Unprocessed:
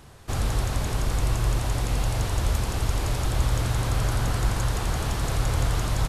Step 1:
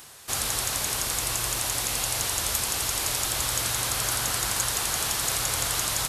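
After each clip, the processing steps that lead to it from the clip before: tilt EQ +4 dB/octave; reverse; upward compressor, threshold -39 dBFS; reverse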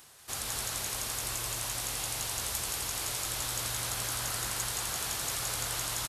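delay 188 ms -4.5 dB; trim -8.5 dB

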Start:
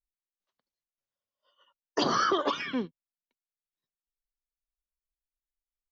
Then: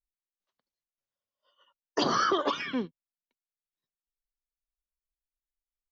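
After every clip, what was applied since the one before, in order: no audible change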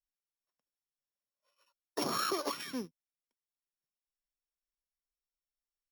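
sorted samples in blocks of 8 samples; trim -7.5 dB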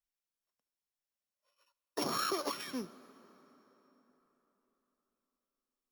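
plate-style reverb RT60 4.2 s, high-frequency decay 0.65×, DRR 16.5 dB; trim -1 dB

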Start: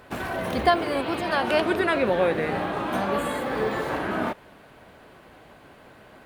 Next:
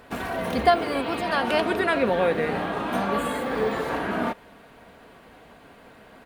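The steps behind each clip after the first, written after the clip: comb 4.3 ms, depth 32%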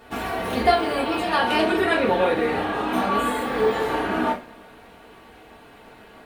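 two-slope reverb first 0.28 s, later 2.1 s, from -28 dB, DRR -4.5 dB; trim -3 dB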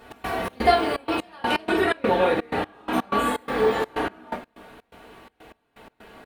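trance gate "x.xx.xxx.x.." 125 bpm -24 dB

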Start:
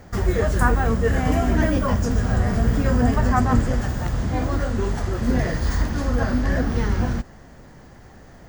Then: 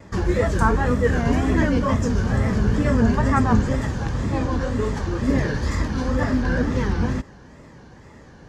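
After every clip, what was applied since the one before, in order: low-pass 7.5 kHz 12 dB/octave; comb of notches 700 Hz; wow and flutter 150 cents; trim +2 dB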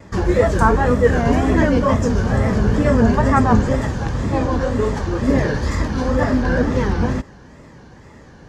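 dynamic bell 620 Hz, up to +5 dB, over -33 dBFS, Q 0.96; trim +2.5 dB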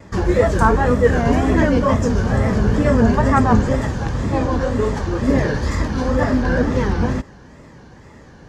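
hard clipper -3.5 dBFS, distortion -41 dB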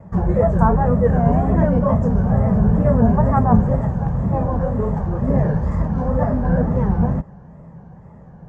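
FFT filter 110 Hz 0 dB, 170 Hz +9 dB, 290 Hz -10 dB, 710 Hz +2 dB, 4.2 kHz -27 dB, 8.3 kHz -20 dB

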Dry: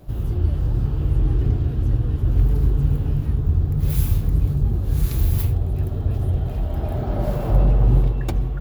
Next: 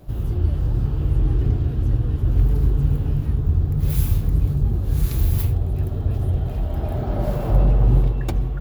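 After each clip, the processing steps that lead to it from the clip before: no audible change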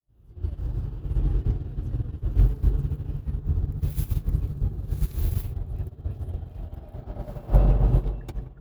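fade-in on the opening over 0.53 s; on a send: bucket-brigade echo 175 ms, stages 2048, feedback 71%, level -10 dB; on the sum: upward expansion 2.5:1, over -27 dBFS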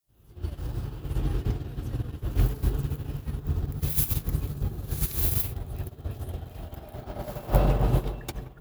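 tilt EQ +2.5 dB/octave; trim +6 dB

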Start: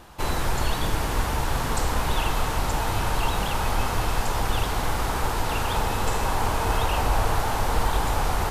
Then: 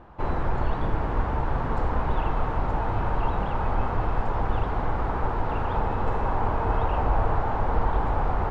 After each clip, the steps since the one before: low-pass 1.3 kHz 12 dB/octave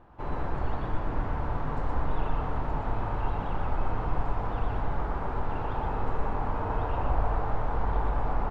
delay 122 ms -3 dB; reverberation RT60 0.85 s, pre-delay 7 ms, DRR 9.5 dB; trim -7.5 dB

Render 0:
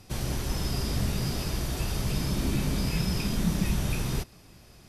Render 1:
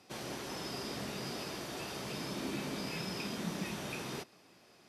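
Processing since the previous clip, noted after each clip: high-pass 290 Hz 12 dB/octave; treble shelf 7.5 kHz -11.5 dB; trim -3.5 dB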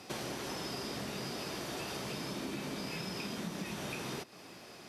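compression 6:1, threshold -48 dBFS, peak gain reduction 14.5 dB; trim +10.5 dB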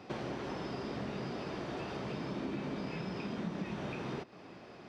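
tape spacing loss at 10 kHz 28 dB; trim +3 dB

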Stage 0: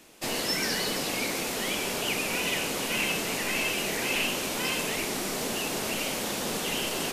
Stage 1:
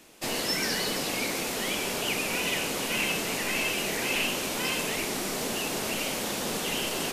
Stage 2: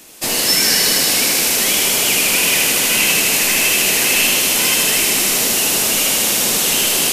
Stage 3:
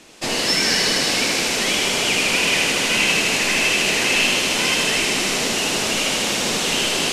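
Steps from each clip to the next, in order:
no audible change
treble shelf 5.1 kHz +11 dB; feedback echo behind a high-pass 78 ms, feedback 85%, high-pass 1.6 kHz, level -4 dB; trim +7.5 dB
distance through air 87 m

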